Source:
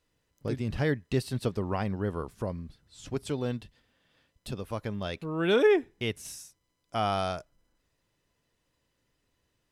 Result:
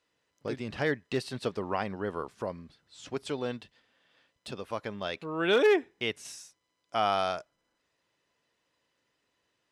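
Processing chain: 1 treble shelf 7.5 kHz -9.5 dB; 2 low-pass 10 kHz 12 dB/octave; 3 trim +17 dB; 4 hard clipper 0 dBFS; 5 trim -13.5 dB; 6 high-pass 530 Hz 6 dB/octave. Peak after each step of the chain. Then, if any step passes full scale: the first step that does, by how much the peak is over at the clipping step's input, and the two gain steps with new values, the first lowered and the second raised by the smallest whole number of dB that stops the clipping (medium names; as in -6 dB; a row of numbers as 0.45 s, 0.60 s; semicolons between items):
-12.5 dBFS, -12.5 dBFS, +4.5 dBFS, 0.0 dBFS, -13.5 dBFS, -12.0 dBFS; step 3, 4.5 dB; step 3 +12 dB, step 5 -8.5 dB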